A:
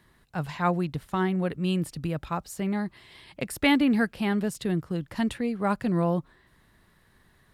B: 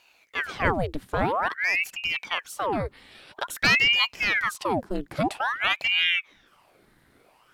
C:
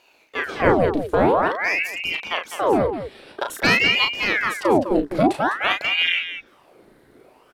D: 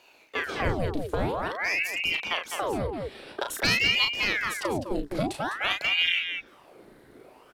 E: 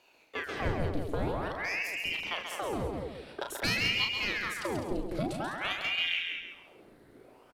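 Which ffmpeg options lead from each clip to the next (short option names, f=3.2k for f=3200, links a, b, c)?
-af "volume=12.5dB,asoftclip=hard,volume=-12.5dB,aeval=exprs='val(0)*sin(2*PI*1400*n/s+1400*0.9/0.5*sin(2*PI*0.5*n/s))':c=same,volume=4dB"
-filter_complex "[0:a]equalizer=f=400:w=0.73:g=11,asplit=2[a][b];[b]aecho=0:1:34.99|204.1:0.562|0.355[c];[a][c]amix=inputs=2:normalize=0"
-filter_complex "[0:a]acrossover=split=130|3000[a][b][c];[b]acompressor=threshold=-28dB:ratio=6[d];[a][d][c]amix=inputs=3:normalize=0"
-filter_complex "[0:a]lowshelf=f=430:g=3.5,asplit=2[a][b];[b]aecho=0:1:135|270|405|540:0.473|0.147|0.0455|0.0141[c];[a][c]amix=inputs=2:normalize=0,volume=-7dB"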